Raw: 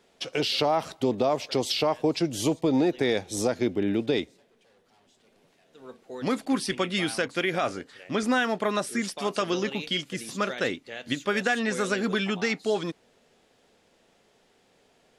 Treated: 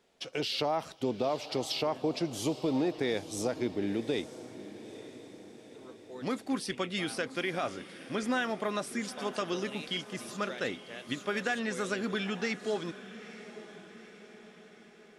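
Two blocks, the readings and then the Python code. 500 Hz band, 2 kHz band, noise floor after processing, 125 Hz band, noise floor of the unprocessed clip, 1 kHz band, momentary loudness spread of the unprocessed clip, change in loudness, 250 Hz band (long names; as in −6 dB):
−6.5 dB, −6.5 dB, −55 dBFS, −6.5 dB, −64 dBFS, −6.5 dB, 6 LU, −6.5 dB, −6.5 dB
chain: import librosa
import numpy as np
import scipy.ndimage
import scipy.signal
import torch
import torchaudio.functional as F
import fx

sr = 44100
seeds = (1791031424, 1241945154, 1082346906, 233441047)

y = fx.echo_diffused(x, sr, ms=897, feedback_pct=54, wet_db=-14.5)
y = y * 10.0 ** (-6.5 / 20.0)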